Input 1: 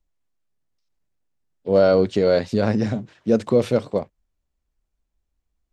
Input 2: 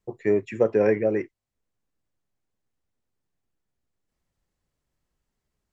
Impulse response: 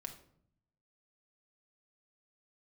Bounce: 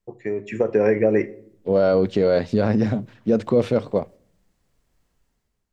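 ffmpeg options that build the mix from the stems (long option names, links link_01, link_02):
-filter_complex "[0:a]lowpass=frequency=3000:poles=1,alimiter=limit=-11dB:level=0:latency=1:release=31,volume=-11dB,asplit=3[link_01][link_02][link_03];[link_02]volume=-16dB[link_04];[1:a]acompressor=threshold=-23dB:ratio=6,volume=2dB,asplit=2[link_05][link_06];[link_06]volume=-10dB[link_07];[link_03]apad=whole_len=252682[link_08];[link_05][link_08]sidechaingate=range=-7dB:threshold=-53dB:ratio=16:detection=peak[link_09];[2:a]atrim=start_sample=2205[link_10];[link_04][link_07]amix=inputs=2:normalize=0[link_11];[link_11][link_10]afir=irnorm=-1:irlink=0[link_12];[link_01][link_09][link_12]amix=inputs=3:normalize=0,dynaudnorm=framelen=240:gausssize=5:maxgain=12dB"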